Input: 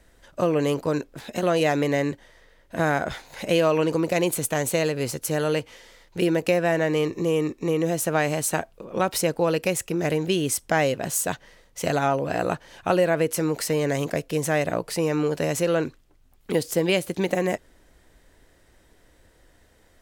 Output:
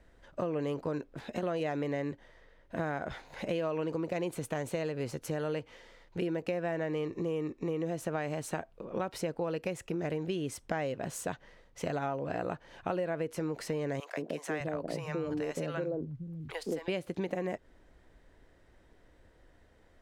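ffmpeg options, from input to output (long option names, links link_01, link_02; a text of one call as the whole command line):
ffmpeg -i in.wav -filter_complex "[0:a]asettb=1/sr,asplit=3[link_01][link_02][link_03];[link_01]atrim=end=14.004[link_04];[link_02]atrim=start=14:end=16.88,asetpts=PTS-STARTPTS,afade=type=in:duration=0.004:curve=qsin,afade=type=out:start_time=2.876:duration=0.004:curve=qsin,acrossover=split=170|680[link_05][link_06][link_07];[link_06]adelay=170[link_08];[link_05]adelay=600[link_09];[link_09][link_08][link_07]amix=inputs=3:normalize=0,atrim=end_sample=127008[link_10];[link_03]atrim=start=16.876[link_11];[link_04][link_10]acrossfade=duration=0.004:curve1=hsin:curve2=qsin[link_12];[link_12][link_11]acrossfade=duration=0.004:curve1=qsin:curve2=hsin,aemphasis=mode=reproduction:type=75kf,acompressor=threshold=-29dB:ratio=3,volume=-3.5dB" out.wav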